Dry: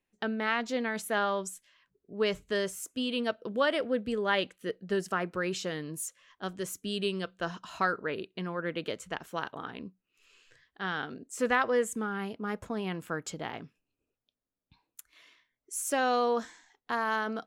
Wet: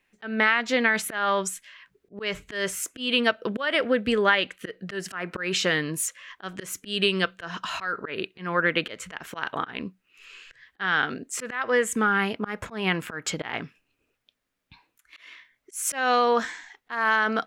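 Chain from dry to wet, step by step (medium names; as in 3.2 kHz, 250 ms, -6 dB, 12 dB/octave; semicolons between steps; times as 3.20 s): peaking EQ 2 kHz +10.5 dB 1.8 oct; compression 6:1, threshold -25 dBFS, peak gain reduction 11.5 dB; slow attack 179 ms; trim +8 dB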